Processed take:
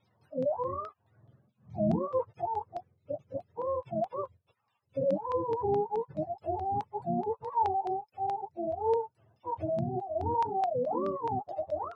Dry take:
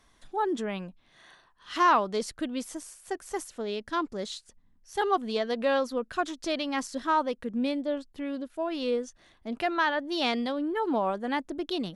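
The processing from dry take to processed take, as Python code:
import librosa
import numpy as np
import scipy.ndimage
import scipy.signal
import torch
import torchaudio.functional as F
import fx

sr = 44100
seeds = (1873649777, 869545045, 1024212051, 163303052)

y = fx.octave_mirror(x, sr, pivot_hz=470.0)
y = fx.low_shelf_res(y, sr, hz=380.0, db=-7.5, q=1.5)
y = fx.filter_lfo_lowpass(y, sr, shape='saw_down', hz=4.7, low_hz=850.0, high_hz=4300.0, q=1.4)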